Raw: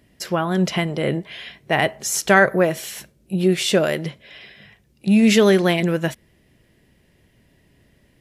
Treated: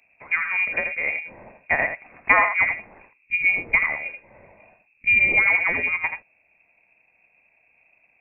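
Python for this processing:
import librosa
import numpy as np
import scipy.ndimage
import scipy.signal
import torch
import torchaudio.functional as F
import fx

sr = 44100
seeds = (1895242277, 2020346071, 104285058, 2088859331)

p1 = fx.transient(x, sr, attack_db=6, sustain_db=0)
p2 = p1 + fx.echo_single(p1, sr, ms=82, db=-7.5, dry=0)
p3 = fx.freq_invert(p2, sr, carrier_hz=2600)
y = p3 * 10.0 ** (-6.0 / 20.0)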